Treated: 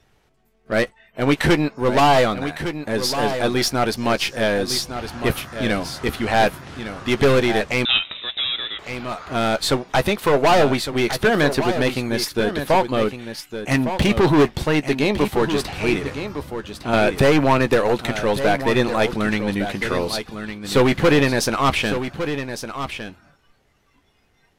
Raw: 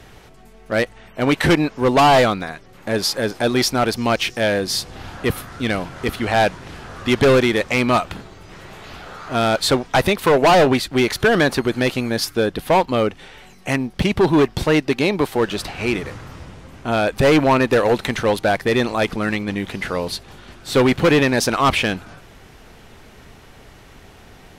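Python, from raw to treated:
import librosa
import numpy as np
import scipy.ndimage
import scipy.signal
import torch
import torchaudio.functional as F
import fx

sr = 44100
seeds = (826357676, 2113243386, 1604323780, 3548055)

p1 = np.where(x < 0.0, 10.0 ** (-3.0 / 20.0) * x, x)
p2 = fx.noise_reduce_blind(p1, sr, reduce_db=17)
p3 = fx.leveller(p2, sr, passes=2, at=(13.71, 14.57))
p4 = fx.rider(p3, sr, range_db=10, speed_s=2.0)
p5 = p3 + (p4 * 10.0 ** (-0.5 / 20.0))
p6 = fx.doubler(p5, sr, ms=14.0, db=-12.0)
p7 = p6 + fx.echo_single(p6, sr, ms=1158, db=-9.5, dry=0)
p8 = fx.freq_invert(p7, sr, carrier_hz=3800, at=(7.85, 8.79))
p9 = fx.band_squash(p8, sr, depth_pct=70, at=(16.93, 17.76))
y = p9 * 10.0 ** (-6.5 / 20.0)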